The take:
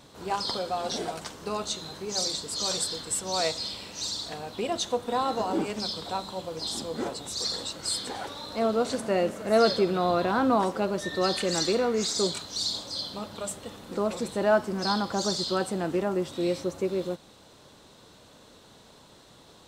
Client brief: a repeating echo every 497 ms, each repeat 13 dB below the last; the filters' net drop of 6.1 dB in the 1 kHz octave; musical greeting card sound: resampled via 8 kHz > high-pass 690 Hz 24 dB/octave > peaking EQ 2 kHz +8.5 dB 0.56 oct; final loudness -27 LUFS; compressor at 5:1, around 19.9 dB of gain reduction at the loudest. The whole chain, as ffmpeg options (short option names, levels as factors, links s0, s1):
-af "equalizer=f=1000:t=o:g=-8,acompressor=threshold=0.00708:ratio=5,aecho=1:1:497|994|1491:0.224|0.0493|0.0108,aresample=8000,aresample=44100,highpass=f=690:w=0.5412,highpass=f=690:w=1.3066,equalizer=f=2000:t=o:w=0.56:g=8.5,volume=15"